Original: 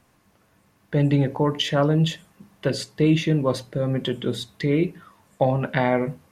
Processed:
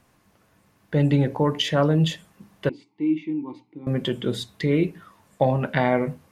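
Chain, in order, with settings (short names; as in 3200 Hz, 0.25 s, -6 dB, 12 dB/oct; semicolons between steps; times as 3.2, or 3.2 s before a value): 2.69–3.87 vowel filter u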